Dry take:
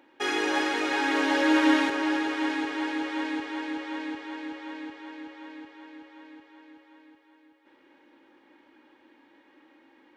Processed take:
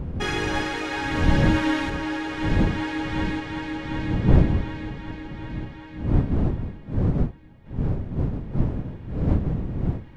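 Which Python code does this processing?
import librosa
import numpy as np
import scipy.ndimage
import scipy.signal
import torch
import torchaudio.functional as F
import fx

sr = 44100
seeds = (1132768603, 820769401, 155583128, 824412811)

y = fx.dmg_wind(x, sr, seeds[0], corner_hz=160.0, level_db=-26.0)
y = fx.rider(y, sr, range_db=5, speed_s=2.0)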